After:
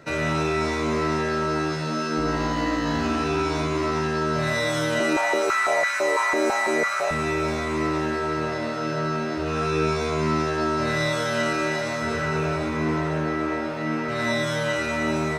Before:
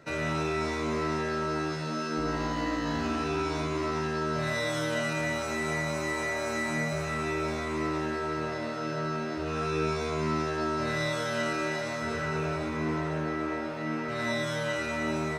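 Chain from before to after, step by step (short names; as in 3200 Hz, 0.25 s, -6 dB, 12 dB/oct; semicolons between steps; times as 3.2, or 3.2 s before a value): 5–7.11 stepped high-pass 6 Hz 320–1600 Hz; gain +6 dB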